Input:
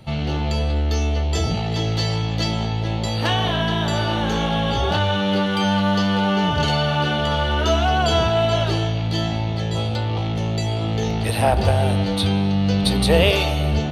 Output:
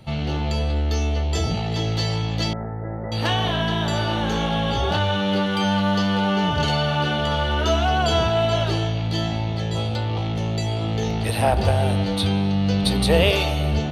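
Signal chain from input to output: 2.53–3.12 rippled Chebyshev low-pass 2000 Hz, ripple 6 dB; gain -1.5 dB

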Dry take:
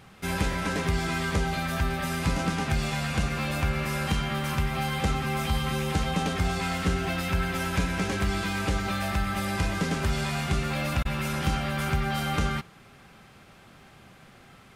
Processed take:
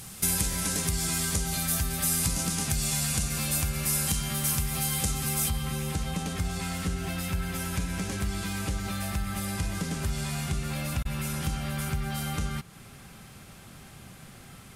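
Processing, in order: bell 11000 Hz +11 dB 1.5 oct; compressor 3:1, threshold -35 dBFS, peak gain reduction 11.5 dB; tone controls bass +7 dB, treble +15 dB, from 5.48 s treble +3 dB

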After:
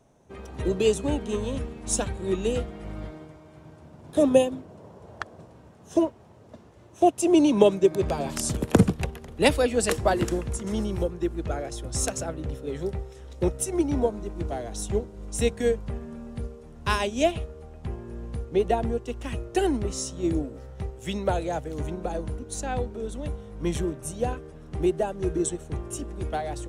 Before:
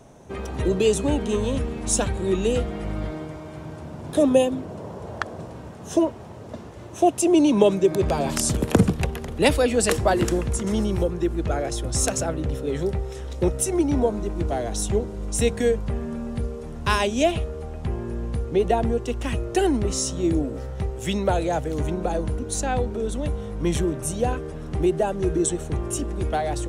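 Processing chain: upward expander 1.5:1, over -37 dBFS

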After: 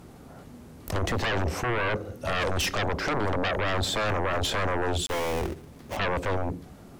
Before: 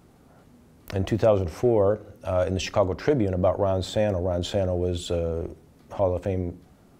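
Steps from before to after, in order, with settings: 5.06–5.97 switching dead time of 0.29 ms; limiter -14.5 dBFS, peak gain reduction 6 dB; sine folder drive 12 dB, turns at -14.5 dBFS; gain -8.5 dB

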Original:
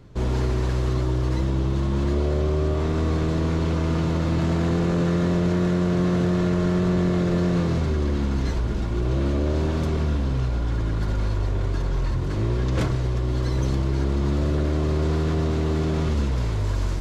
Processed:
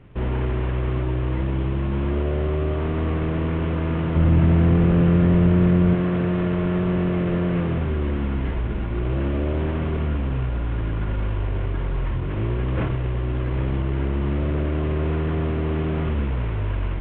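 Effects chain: CVSD 16 kbps; 4.16–5.95 low shelf 180 Hz +11 dB

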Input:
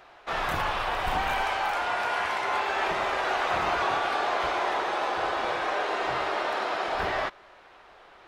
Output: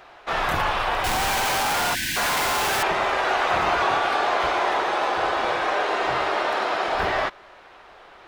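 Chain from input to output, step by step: 1.04–2.83 infinite clipping; 1.95–2.17 spectral gain 360–1500 Hz -28 dB; gain +5 dB

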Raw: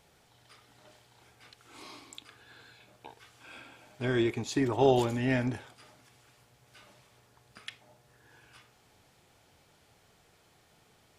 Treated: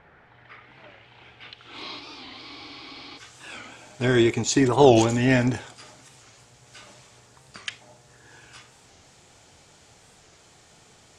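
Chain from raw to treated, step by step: low-pass sweep 1700 Hz -> 7400 Hz, 0.15–3.36; spectral freeze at 2.02, 1.15 s; record warp 45 rpm, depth 160 cents; gain +8.5 dB

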